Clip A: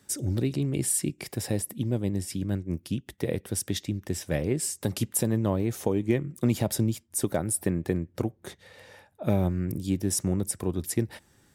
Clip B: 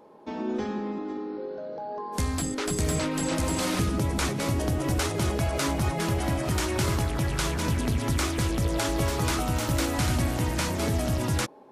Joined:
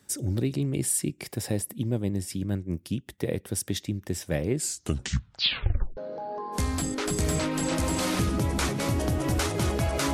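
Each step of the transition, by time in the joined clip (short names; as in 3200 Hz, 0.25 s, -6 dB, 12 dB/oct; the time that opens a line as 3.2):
clip A
4.55 tape stop 1.42 s
5.97 switch to clip B from 1.57 s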